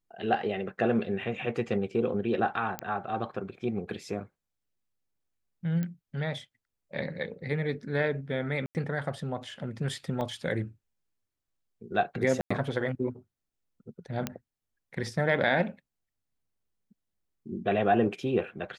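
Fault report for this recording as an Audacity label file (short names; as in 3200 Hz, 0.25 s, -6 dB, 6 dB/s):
2.790000	2.790000	pop -16 dBFS
5.830000	5.830000	pop -21 dBFS
8.660000	8.750000	gap 89 ms
10.210000	10.210000	gap 3.2 ms
12.410000	12.510000	gap 95 ms
14.270000	14.270000	pop -15 dBFS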